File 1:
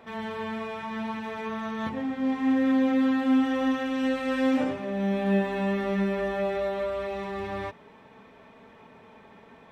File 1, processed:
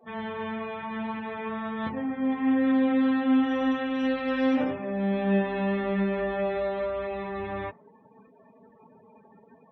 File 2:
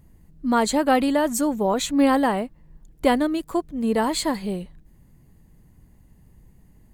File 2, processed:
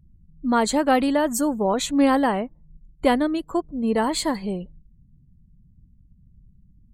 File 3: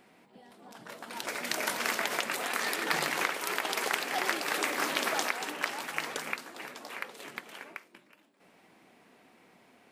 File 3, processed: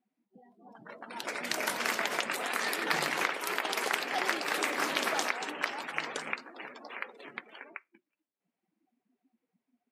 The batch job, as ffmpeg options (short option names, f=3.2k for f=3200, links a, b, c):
-af "afftdn=nr=30:nf=-46"